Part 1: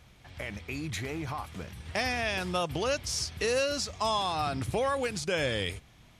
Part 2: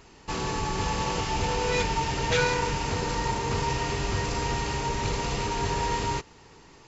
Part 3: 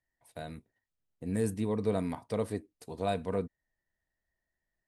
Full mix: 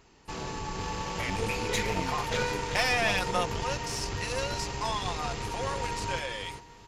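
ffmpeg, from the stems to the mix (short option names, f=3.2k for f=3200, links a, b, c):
-filter_complex "[0:a]acontrast=36,highpass=620,aecho=1:1:5.7:0.57,adelay=800,volume=-2.5dB,afade=t=out:st=3.08:d=0.55:silence=0.375837[a];[1:a]volume=-7dB,asplit=2[b][c];[c]volume=-7.5dB[d];[2:a]flanger=delay=16.5:depth=5.7:speed=1.2,volume=-3dB[e];[d]aecho=0:1:391|782|1173|1564:1|0.31|0.0961|0.0298[f];[a][b][e][f]amix=inputs=4:normalize=0,aeval=exprs='0.237*(cos(1*acos(clip(val(0)/0.237,-1,1)))-cos(1*PI/2))+0.0168*(cos(6*acos(clip(val(0)/0.237,-1,1)))-cos(6*PI/2))':c=same"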